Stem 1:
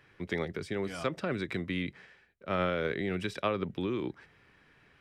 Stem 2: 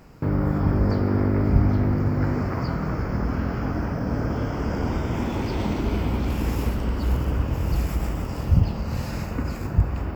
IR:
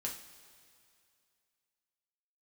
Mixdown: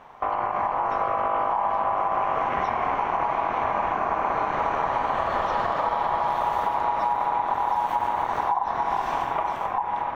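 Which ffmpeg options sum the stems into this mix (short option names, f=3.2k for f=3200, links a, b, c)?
-filter_complex "[0:a]volume=-8.5dB[a];[1:a]alimiter=limit=-15.5dB:level=0:latency=1:release=81,dynaudnorm=f=210:g=11:m=6.5dB,volume=2.5dB[b];[a][b]amix=inputs=2:normalize=0,bass=f=250:g=1,treble=f=4k:g=-12,aeval=exprs='val(0)*sin(2*PI*900*n/s)':c=same,acompressor=threshold=-21dB:ratio=5"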